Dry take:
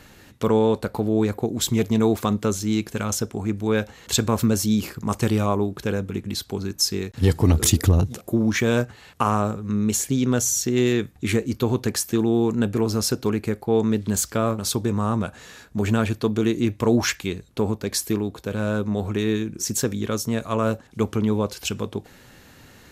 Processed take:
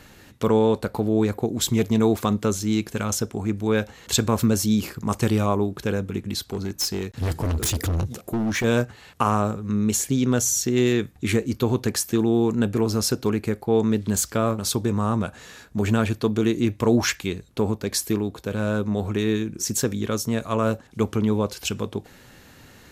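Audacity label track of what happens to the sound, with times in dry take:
6.490000	8.640000	hard clip -21 dBFS

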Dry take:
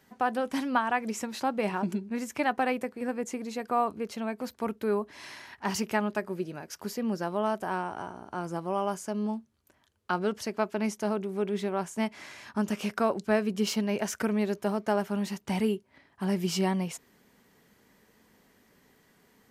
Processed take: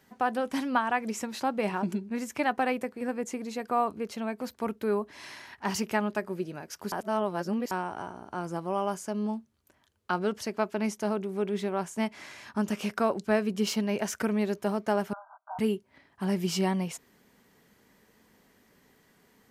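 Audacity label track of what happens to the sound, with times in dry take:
6.920000	7.710000	reverse
15.130000	15.590000	brick-wall FIR band-pass 610–1600 Hz

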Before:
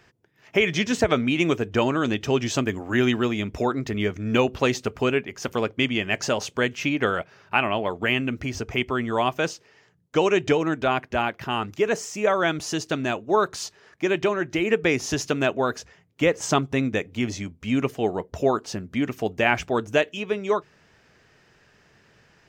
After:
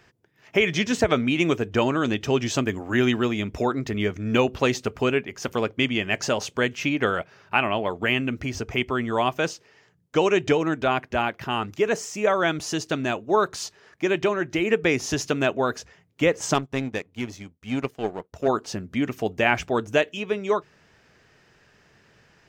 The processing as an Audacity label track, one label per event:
16.540000	18.480000	power-law curve exponent 1.4

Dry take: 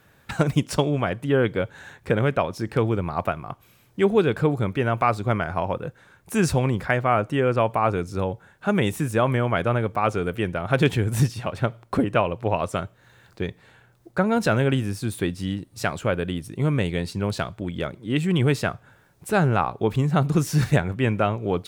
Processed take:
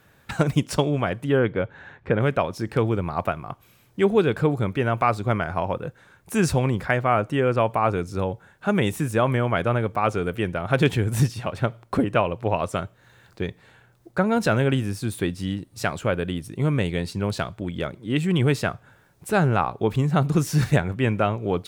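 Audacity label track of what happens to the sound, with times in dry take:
1.390000	2.210000	LPF 2600 Hz

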